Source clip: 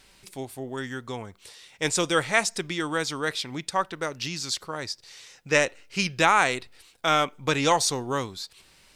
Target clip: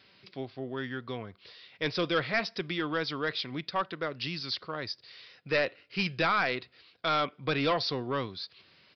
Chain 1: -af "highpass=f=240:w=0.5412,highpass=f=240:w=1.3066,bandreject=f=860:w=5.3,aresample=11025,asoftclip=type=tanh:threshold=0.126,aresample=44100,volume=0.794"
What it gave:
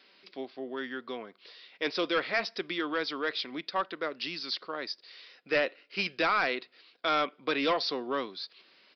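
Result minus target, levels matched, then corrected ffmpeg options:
125 Hz band -13.5 dB
-af "highpass=f=87:w=0.5412,highpass=f=87:w=1.3066,bandreject=f=860:w=5.3,aresample=11025,asoftclip=type=tanh:threshold=0.126,aresample=44100,volume=0.794"

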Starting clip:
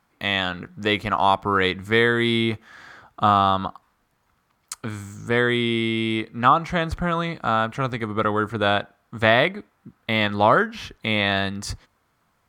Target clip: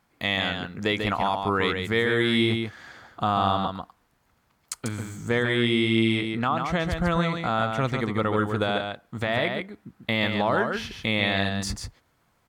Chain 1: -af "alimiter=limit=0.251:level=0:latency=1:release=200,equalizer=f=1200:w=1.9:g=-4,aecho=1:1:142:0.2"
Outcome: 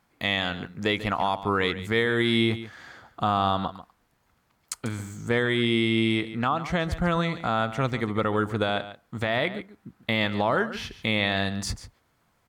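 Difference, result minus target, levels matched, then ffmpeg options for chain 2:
echo-to-direct -8.5 dB
-af "alimiter=limit=0.251:level=0:latency=1:release=200,equalizer=f=1200:w=1.9:g=-4,aecho=1:1:142:0.531"

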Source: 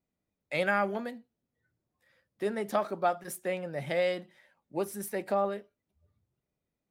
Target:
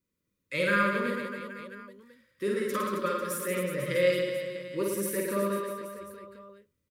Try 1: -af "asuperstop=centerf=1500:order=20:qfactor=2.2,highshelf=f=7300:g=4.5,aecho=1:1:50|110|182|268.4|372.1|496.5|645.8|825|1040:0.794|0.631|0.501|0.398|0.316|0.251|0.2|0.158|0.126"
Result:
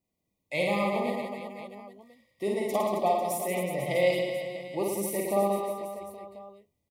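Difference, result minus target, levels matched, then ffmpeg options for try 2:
2 kHz band -5.5 dB
-af "asuperstop=centerf=740:order=20:qfactor=2.2,highshelf=f=7300:g=4.5,aecho=1:1:50|110|182|268.4|372.1|496.5|645.8|825|1040:0.794|0.631|0.501|0.398|0.316|0.251|0.2|0.158|0.126"

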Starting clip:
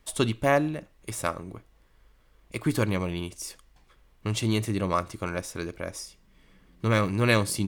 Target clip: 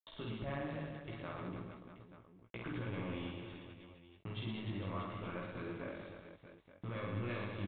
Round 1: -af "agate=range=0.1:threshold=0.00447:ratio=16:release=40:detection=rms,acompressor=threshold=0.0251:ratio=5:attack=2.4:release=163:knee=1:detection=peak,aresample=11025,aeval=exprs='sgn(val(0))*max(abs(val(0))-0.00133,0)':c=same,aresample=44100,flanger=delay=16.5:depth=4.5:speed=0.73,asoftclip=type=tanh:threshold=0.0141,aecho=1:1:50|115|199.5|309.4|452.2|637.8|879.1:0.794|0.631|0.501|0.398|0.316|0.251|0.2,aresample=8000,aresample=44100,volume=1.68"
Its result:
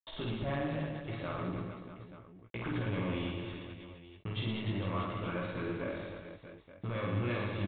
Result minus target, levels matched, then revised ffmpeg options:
compression: peak gain reduction -8 dB
-af "agate=range=0.1:threshold=0.00447:ratio=16:release=40:detection=rms,acompressor=threshold=0.00794:ratio=5:attack=2.4:release=163:knee=1:detection=peak,aresample=11025,aeval=exprs='sgn(val(0))*max(abs(val(0))-0.00133,0)':c=same,aresample=44100,flanger=delay=16.5:depth=4.5:speed=0.73,asoftclip=type=tanh:threshold=0.0141,aecho=1:1:50|115|199.5|309.4|452.2|637.8|879.1:0.794|0.631|0.501|0.398|0.316|0.251|0.2,aresample=8000,aresample=44100,volume=1.68"

